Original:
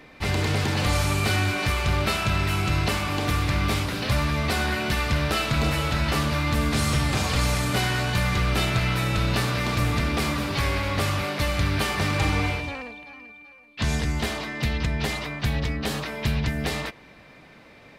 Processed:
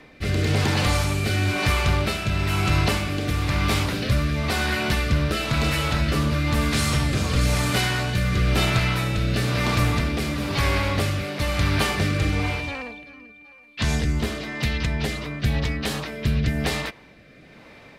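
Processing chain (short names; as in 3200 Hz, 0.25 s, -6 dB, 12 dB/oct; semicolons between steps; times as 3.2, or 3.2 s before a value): rotary speaker horn 1 Hz; gain +3.5 dB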